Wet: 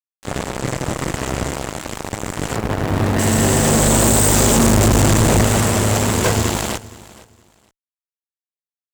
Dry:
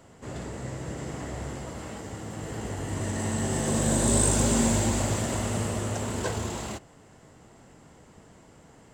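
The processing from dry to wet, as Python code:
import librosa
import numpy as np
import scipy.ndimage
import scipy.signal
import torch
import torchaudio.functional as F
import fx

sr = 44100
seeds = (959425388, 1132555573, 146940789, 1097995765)

y = fx.median_filter(x, sr, points=15, at=(2.56, 3.19))
y = fx.low_shelf(y, sr, hz=350.0, db=10.0, at=(4.56, 5.44))
y = fx.cheby_harmonics(y, sr, harmonics=(3, 6), levels_db=(-30, -11), full_scale_db=-6.0)
y = fx.fuzz(y, sr, gain_db=32.0, gate_db=-36.0)
y = fx.echo_feedback(y, sr, ms=467, feedback_pct=22, wet_db=-20.0)
y = F.gain(torch.from_numpy(y), 2.0).numpy()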